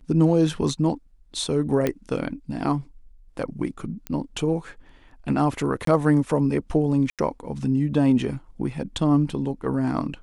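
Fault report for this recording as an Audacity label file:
1.870000	1.870000	pop -10 dBFS
4.070000	4.070000	pop -16 dBFS
5.850000	5.870000	dropout 23 ms
7.100000	7.190000	dropout 87 ms

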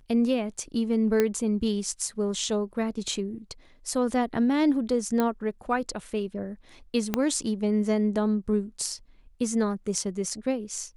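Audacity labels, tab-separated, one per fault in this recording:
1.200000	1.200000	pop -10 dBFS
5.200000	5.200000	pop -13 dBFS
7.140000	7.140000	pop -10 dBFS

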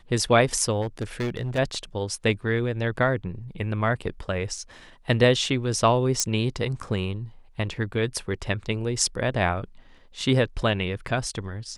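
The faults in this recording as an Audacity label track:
0.810000	1.590000	clipped -23.5 dBFS
6.200000	6.200000	pop -8 dBFS

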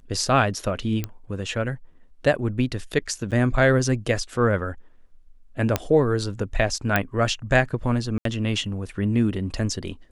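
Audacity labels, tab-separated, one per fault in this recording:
1.040000	1.040000	pop -13 dBFS
3.310000	3.320000	dropout 7.9 ms
5.760000	5.760000	pop -6 dBFS
6.960000	6.960000	pop -6 dBFS
8.180000	8.250000	dropout 73 ms

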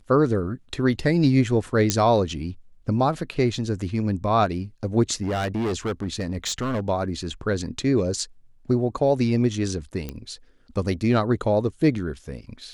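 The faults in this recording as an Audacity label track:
1.900000	1.900000	pop -5 dBFS
5.220000	6.800000	clipped -22 dBFS
10.090000	10.090000	pop -17 dBFS

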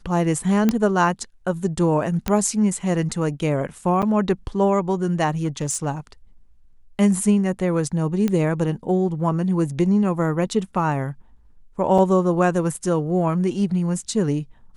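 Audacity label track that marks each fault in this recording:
0.690000	0.690000	pop -6 dBFS
2.280000	2.280000	pop -8 dBFS
4.020000	4.030000	dropout 7 ms
5.430000	5.860000	clipped -17.5 dBFS
8.280000	8.280000	pop -11 dBFS
11.980000	11.980000	dropout 4.2 ms

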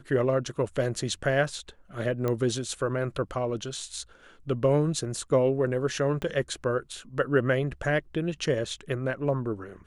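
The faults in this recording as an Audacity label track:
2.280000	2.280000	pop -16 dBFS
6.220000	6.220000	pop -20 dBFS

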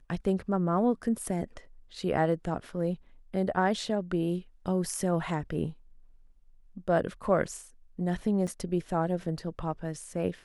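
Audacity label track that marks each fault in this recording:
8.470000	8.480000	dropout 5.3 ms

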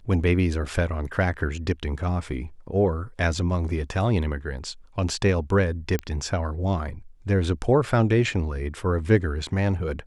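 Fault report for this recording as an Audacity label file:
5.990000	5.990000	pop -14 dBFS

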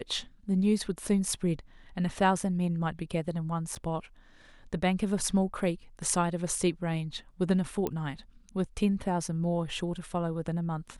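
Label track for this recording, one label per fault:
3.750000	3.760000	dropout 6.9 ms
7.870000	7.870000	pop -17 dBFS

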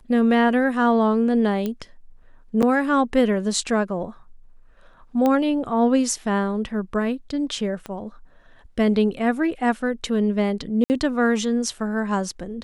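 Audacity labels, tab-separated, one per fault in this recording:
1.660000	1.660000	pop -14 dBFS
2.620000	2.630000	dropout 7.3 ms
5.260000	5.260000	pop -10 dBFS
7.860000	7.860000	pop -19 dBFS
10.840000	10.900000	dropout 59 ms

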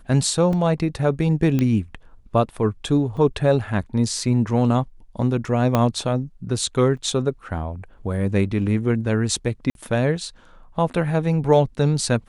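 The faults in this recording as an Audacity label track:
0.530000	0.530000	dropout 2.8 ms
1.590000	1.590000	pop -10 dBFS
3.170000	3.170000	dropout 4.3 ms
5.750000	5.750000	pop -6 dBFS
6.970000	6.970000	dropout 4 ms
9.700000	9.750000	dropout 52 ms

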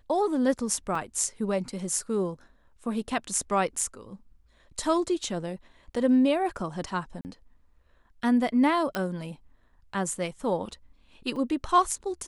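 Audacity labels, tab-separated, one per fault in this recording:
0.950000	0.950000	dropout 3.3 ms
3.790000	3.790000	dropout 2.4 ms
7.210000	7.250000	dropout 39 ms
8.950000	8.950000	pop -14 dBFS
11.360000	11.360000	dropout 3.3 ms

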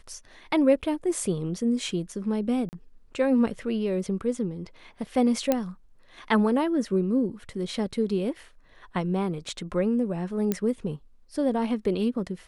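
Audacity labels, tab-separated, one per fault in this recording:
2.690000	2.730000	dropout 39 ms
5.520000	5.520000	pop -9 dBFS
10.520000	10.520000	pop -12 dBFS

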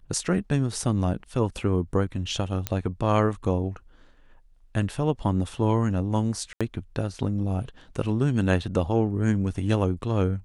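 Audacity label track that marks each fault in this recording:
2.670000	2.670000	pop -10 dBFS
6.530000	6.610000	dropout 76 ms

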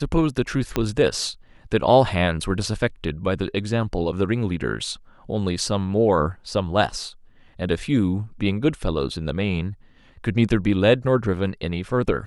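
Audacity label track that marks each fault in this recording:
0.760000	0.760000	pop -7 dBFS

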